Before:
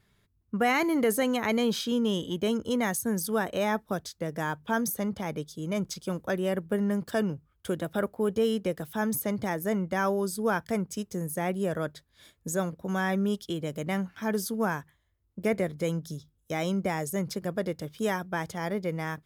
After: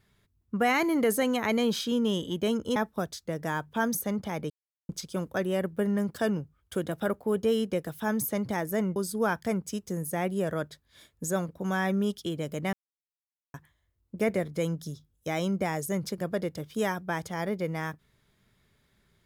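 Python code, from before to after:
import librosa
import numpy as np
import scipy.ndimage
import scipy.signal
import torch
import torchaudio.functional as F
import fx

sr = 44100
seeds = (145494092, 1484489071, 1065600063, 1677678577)

y = fx.edit(x, sr, fx.cut(start_s=2.76, length_s=0.93),
    fx.silence(start_s=5.43, length_s=0.39),
    fx.cut(start_s=9.89, length_s=0.31),
    fx.silence(start_s=13.97, length_s=0.81), tone=tone)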